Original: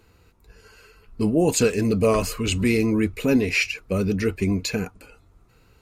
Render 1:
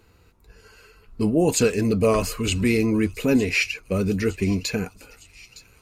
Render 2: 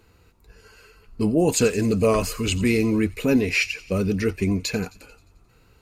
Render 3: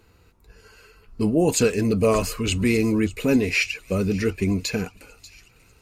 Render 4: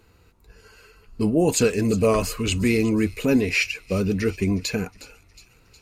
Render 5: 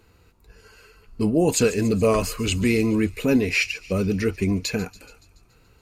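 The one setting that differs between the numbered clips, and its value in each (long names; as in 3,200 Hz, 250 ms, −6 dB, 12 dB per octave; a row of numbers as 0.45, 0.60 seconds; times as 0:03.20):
delay with a high-pass on its return, delay time: 911, 88, 589, 363, 142 milliseconds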